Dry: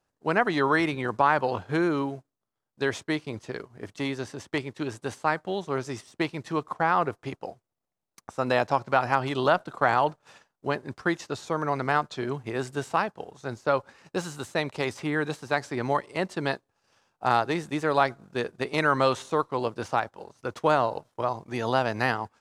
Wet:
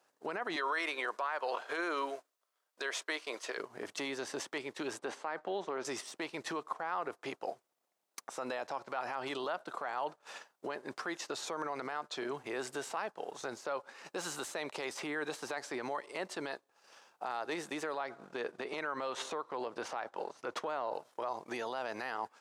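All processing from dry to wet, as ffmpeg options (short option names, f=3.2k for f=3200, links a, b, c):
-filter_complex "[0:a]asettb=1/sr,asplit=3[a][b][c];[a]atrim=end=0.564[d];[b]atrim=start=0.56:end=3.58,asetpts=PTS-STARTPTS,afade=t=in:d=0.004:c=qsin,afade=t=out:st=3.016:d=0.004:c=qsin,highpass=550,bandreject=f=830:w=7.5[e];[c]atrim=start=3.576[f];[d][e]acrossfade=d=0.004:c1=hsin:c2=qsin[g];[g][f]acrossfade=d=0.004:c1=qsin:c2=hsin,asettb=1/sr,asplit=3[h][i][j];[h]atrim=end=4.994[k];[i]atrim=start=4.99:end=5.85,asetpts=PTS-STARTPTS,afade=t=in:d=0.004:c=qsin,afade=t=out:st=0.856:d=0.004:c=qsin,highpass=170,aemphasis=mode=reproduction:type=75fm,acompressor=threshold=-27dB:ratio=4:attack=3.2:release=140:knee=1:detection=peak[l];[j]atrim=start=5.846[m];[k][l]acrossfade=d=0.004:c1=hsin:c2=qsin[n];[n][m]acrossfade=d=0.004:c1=qsin:c2=hsin,asettb=1/sr,asplit=3[o][p][q];[o]atrim=end=17.944[r];[p]atrim=start=17.94:end=20.95,asetpts=PTS-STARTPTS,afade=t=in:d=0.004:c=qsin,afade=t=out:st=3.006:d=0.004:c=qsin,lowpass=f=3.7k:p=1,acompressor=threshold=-33dB:ratio=3:attack=3.2:release=140:knee=1:detection=peak[s];[q]atrim=start=20.946[t];[r][s]acrossfade=d=0.004:c1=hsin:c2=qsin[u];[u][t]acrossfade=d=0.004:c1=qsin:c2=hsin,acompressor=threshold=-38dB:ratio=2.5,alimiter=level_in=8dB:limit=-24dB:level=0:latency=1:release=37,volume=-8dB,highpass=390,volume=7dB"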